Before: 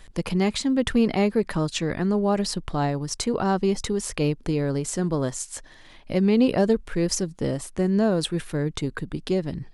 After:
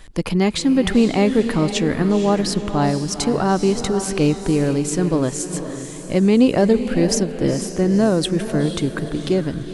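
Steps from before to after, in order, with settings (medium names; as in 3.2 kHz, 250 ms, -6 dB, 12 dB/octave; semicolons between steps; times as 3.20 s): peaking EQ 300 Hz +4 dB 0.29 oct; on a send: echo that smears into a reverb 481 ms, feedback 43%, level -9 dB; on the sum: trim +4.5 dB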